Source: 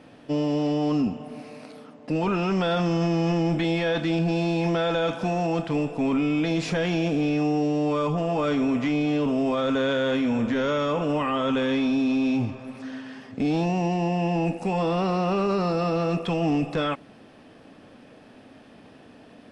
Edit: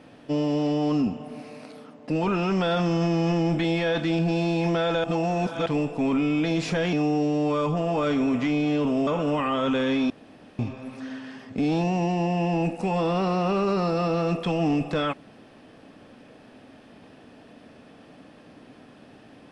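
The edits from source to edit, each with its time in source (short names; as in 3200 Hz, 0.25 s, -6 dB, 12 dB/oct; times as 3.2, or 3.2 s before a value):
5.04–5.66 reverse
6.93–7.34 cut
9.48–10.89 cut
11.92–12.41 room tone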